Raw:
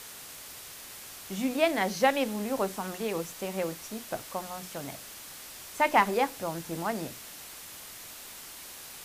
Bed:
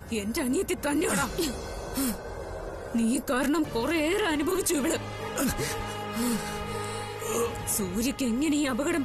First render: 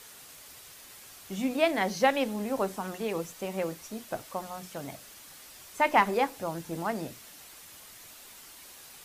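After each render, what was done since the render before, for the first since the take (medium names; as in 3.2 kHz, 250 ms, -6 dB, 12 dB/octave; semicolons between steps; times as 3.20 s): noise reduction 6 dB, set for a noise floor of -46 dBFS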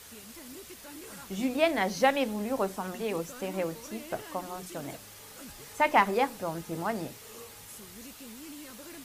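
add bed -20.5 dB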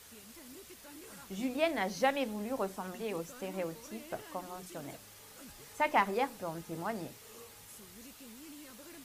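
trim -5.5 dB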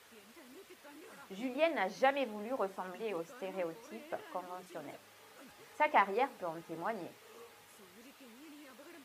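high-pass 81 Hz; tone controls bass -10 dB, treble -11 dB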